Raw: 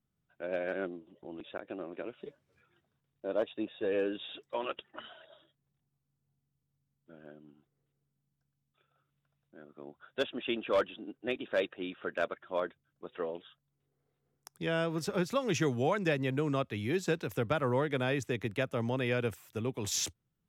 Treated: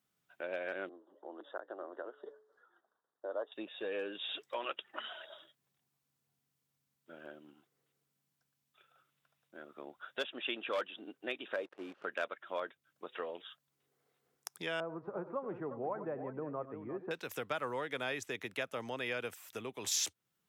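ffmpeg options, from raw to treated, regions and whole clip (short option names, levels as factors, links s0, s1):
-filter_complex "[0:a]asettb=1/sr,asplit=3[s0][s1][s2];[s0]atrim=end=0.894[s3];[s1]atrim=start=0.89:end=3.52,asetpts=PTS-STARTPTS,afade=t=in:d=0.004:c=qsin,afade=t=out:st=2.626:d=0.004:c=qsin,asuperstop=centerf=2400:order=4:qfactor=1.3,acrossover=split=320 2200:gain=0.0708 1 0.126[s4][s5][s6];[s4][s5][s6]amix=inputs=3:normalize=0,bandreject=f=143.6:t=h:w=4,bandreject=f=287.2:t=h:w=4,bandreject=f=430.8:t=h:w=4[s7];[s2]atrim=start=3.516[s8];[s3][s7]acrossfade=d=0.004:c1=hsin:c2=qsin[s9];[s9][s8]acrossfade=d=0.004:c1=qsin:c2=hsin,asettb=1/sr,asplit=3[s10][s11][s12];[s10]atrim=end=11.564[s13];[s11]atrim=start=11.56:end=12.05,asetpts=PTS-STARTPTS,afade=t=in:d=0.004:c=qsin,afade=t=out:st=0.486:d=0.004:c=qsin,acrusher=bits=8:dc=4:mix=0:aa=0.000001,bandpass=f=340:t=q:w=0.65[s14];[s12]atrim=start=12.046[s15];[s13][s14]acrossfade=d=0.004:c1=hsin:c2=qsin[s16];[s16][s15]acrossfade=d=0.004:c1=qsin:c2=hsin,asettb=1/sr,asplit=3[s17][s18][s19];[s17]atrim=end=14.804[s20];[s18]atrim=start=14.8:end=17.11,asetpts=PTS-STARTPTS,afade=t=in:d=0.004:c=qsin,afade=t=out:st=2.306:d=0.004:c=qsin,lowpass=f=1100:w=0.5412,lowpass=f=1100:w=1.3066,aecho=1:1:90|98|352:0.133|0.168|0.282,atrim=end_sample=101871[s21];[s19]atrim=start=17.106[s22];[s20][s21]acrossfade=d=0.004:c1=hsin:c2=qsin[s23];[s23][s22]acrossfade=d=0.004:c1=qsin:c2=hsin,acompressor=threshold=0.00501:ratio=2,highpass=f=860:p=1,volume=2.66"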